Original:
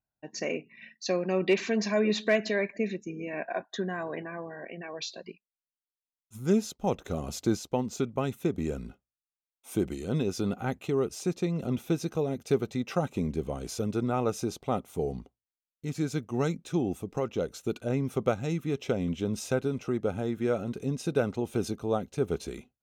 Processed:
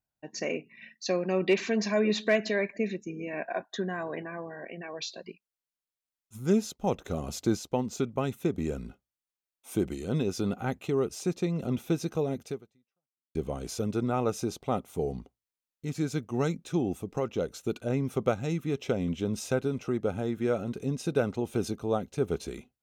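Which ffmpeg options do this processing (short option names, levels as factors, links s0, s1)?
-filter_complex "[0:a]asplit=2[s0][s1];[s0]atrim=end=13.35,asetpts=PTS-STARTPTS,afade=t=out:st=12.44:d=0.91:c=exp[s2];[s1]atrim=start=13.35,asetpts=PTS-STARTPTS,afade=t=in:d=0.004:c=hsin[s3];[s2][s3]concat=n=2:v=0:a=1"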